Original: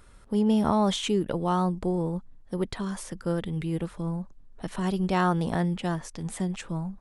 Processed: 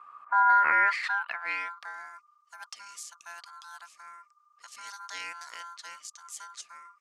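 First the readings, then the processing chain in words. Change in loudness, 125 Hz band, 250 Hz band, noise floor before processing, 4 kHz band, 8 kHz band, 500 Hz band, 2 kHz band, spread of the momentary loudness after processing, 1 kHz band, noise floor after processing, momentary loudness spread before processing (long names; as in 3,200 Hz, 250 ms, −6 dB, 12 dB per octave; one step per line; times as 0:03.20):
+2.5 dB, below −40 dB, −34.5 dB, −52 dBFS, −7.5 dB, −2.5 dB, −21.5 dB, +11.5 dB, 24 LU, +3.5 dB, −67 dBFS, 11 LU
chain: ring modulation 1,200 Hz
band-pass filter sweep 1,100 Hz → 6,300 Hz, 0:00.41–0:02.21
level +7 dB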